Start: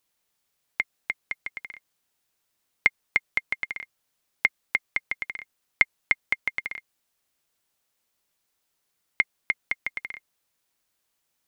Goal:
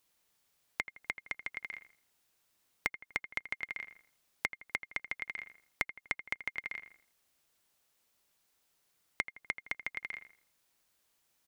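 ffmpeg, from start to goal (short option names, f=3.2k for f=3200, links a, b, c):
-filter_complex "[0:a]asplit=2[a][b];[b]adelay=82,lowpass=f=2.3k:p=1,volume=-12dB,asplit=2[c][d];[d]adelay=82,lowpass=f=2.3k:p=1,volume=0.38,asplit=2[e][f];[f]adelay=82,lowpass=f=2.3k:p=1,volume=0.38,asplit=2[g][h];[h]adelay=82,lowpass=f=2.3k:p=1,volume=0.38[i];[c][e][g][i]amix=inputs=4:normalize=0[j];[a][j]amix=inputs=2:normalize=0,acompressor=threshold=-37dB:ratio=3,volume=1dB"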